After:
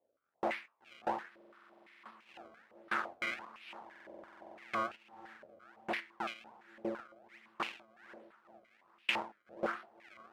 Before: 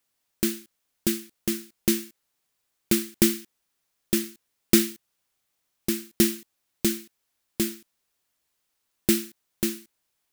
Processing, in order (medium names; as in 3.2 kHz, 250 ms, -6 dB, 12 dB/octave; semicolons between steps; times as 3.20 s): 4.16–4.86 s: tilt shelf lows +9.5 dB, about 710 Hz; valve stage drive 27 dB, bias 0.7; 6.00–6.98 s: distance through air 280 m; on a send: echo that smears into a reverb 510 ms, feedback 46%, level -16 dB; on the sum: decimation with a swept rate 28×, swing 160% 1.3 Hz; flange 1.4 Hz, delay 8.8 ms, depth 3.6 ms, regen +79%; buffer glitch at 1.36/3.86 s, samples 2048, times 14; step-sequenced band-pass 5.9 Hz 560–2600 Hz; trim +14.5 dB